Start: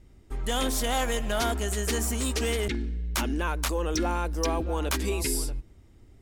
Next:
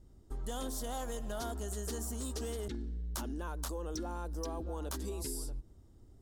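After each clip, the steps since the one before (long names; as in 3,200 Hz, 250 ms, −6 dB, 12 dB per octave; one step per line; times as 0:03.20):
parametric band 2,300 Hz −15 dB 0.83 octaves
downward compressor, threshold −31 dBFS, peak gain reduction 8 dB
level −4.5 dB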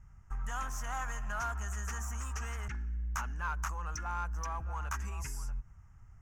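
drawn EQ curve 160 Hz 0 dB, 300 Hz −23 dB, 530 Hz −16 dB, 840 Hz +1 dB, 1,300 Hz +10 dB, 2,600 Hz +6 dB, 3,900 Hz −24 dB, 6,200 Hz +2 dB, 9,000 Hz −14 dB, 13,000 Hz −11 dB
in parallel at −6 dB: hard clipping −37 dBFS, distortion −13 dB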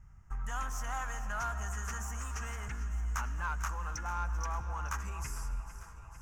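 delay that swaps between a low-pass and a high-pass 225 ms, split 1,100 Hz, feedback 83%, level −12 dB
on a send at −15 dB: convolution reverb RT60 2.5 s, pre-delay 60 ms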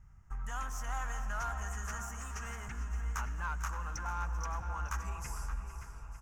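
slap from a distant wall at 98 metres, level −7 dB
level −2 dB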